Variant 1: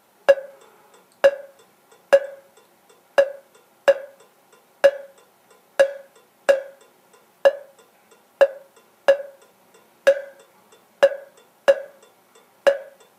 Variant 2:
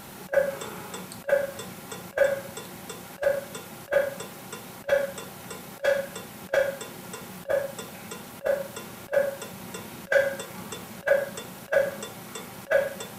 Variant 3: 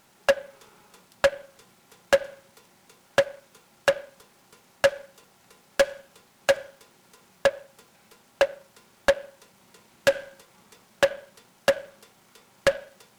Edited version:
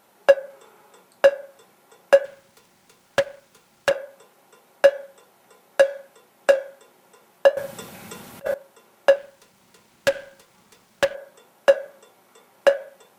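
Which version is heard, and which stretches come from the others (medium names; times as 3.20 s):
1
2.25–3.91 s: from 3
7.57–8.54 s: from 2
9.16–11.15 s: from 3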